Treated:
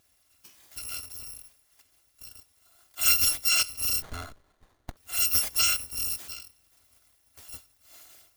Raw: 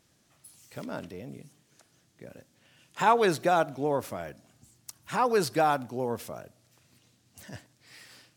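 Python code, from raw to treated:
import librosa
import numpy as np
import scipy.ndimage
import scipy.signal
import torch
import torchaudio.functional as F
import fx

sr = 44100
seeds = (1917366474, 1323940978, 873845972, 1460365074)

y = fx.bit_reversed(x, sr, seeds[0], block=256)
y = fx.running_max(y, sr, window=17, at=(4.02, 4.97))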